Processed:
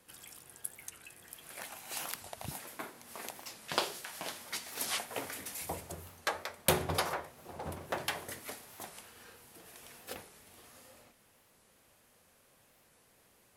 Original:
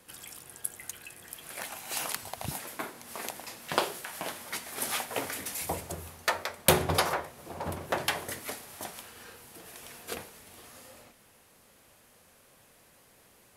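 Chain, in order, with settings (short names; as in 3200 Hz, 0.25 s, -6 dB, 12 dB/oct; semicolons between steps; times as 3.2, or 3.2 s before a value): 3.33–4.99 dynamic EQ 4900 Hz, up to +7 dB, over -49 dBFS, Q 0.78; 7.52–8.54 short-mantissa float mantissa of 4-bit; record warp 45 rpm, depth 160 cents; gain -6 dB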